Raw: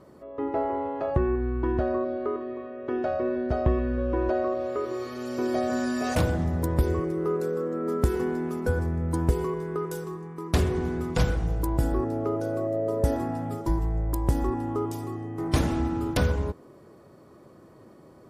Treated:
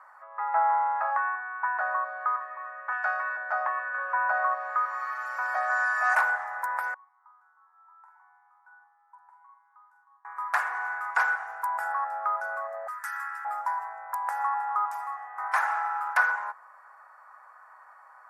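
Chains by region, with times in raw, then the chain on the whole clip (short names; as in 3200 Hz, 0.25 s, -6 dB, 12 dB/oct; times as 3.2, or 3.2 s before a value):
2.92–3.37 HPF 490 Hz 6 dB/oct + tilt +3.5 dB/oct
3.94–4.55 HPF 160 Hz + fast leveller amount 50%
6.94–10.25 band-pass 910 Hz, Q 9.6 + differentiator + doubler 46 ms -6 dB
12.87–13.45 steep high-pass 1200 Hz + high shelf 2900 Hz +7.5 dB
whole clip: elliptic high-pass 820 Hz, stop band 60 dB; resonant high shelf 2300 Hz -13.5 dB, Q 3; gain +7 dB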